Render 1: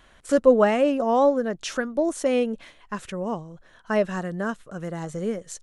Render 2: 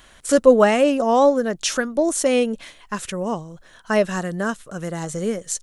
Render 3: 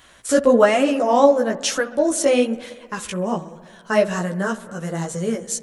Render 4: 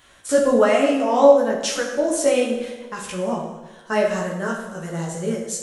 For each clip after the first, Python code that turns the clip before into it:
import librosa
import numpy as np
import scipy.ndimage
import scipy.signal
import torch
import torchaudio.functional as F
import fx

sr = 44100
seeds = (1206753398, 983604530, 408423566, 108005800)

y1 = fx.high_shelf(x, sr, hz=4000.0, db=11.0)
y1 = F.gain(torch.from_numpy(y1), 3.5).numpy()
y2 = fx.highpass(y1, sr, hz=46.0, slope=6)
y2 = fx.echo_wet_lowpass(y2, sr, ms=66, feedback_pct=78, hz=1900.0, wet_db=-18.0)
y2 = fx.chorus_voices(y2, sr, voices=2, hz=1.1, base_ms=14, depth_ms=3.9, mix_pct=45)
y2 = F.gain(torch.from_numpy(y2), 3.5).numpy()
y3 = fx.rev_plate(y2, sr, seeds[0], rt60_s=0.99, hf_ratio=0.85, predelay_ms=0, drr_db=1.0)
y3 = F.gain(torch.from_numpy(y3), -4.0).numpy()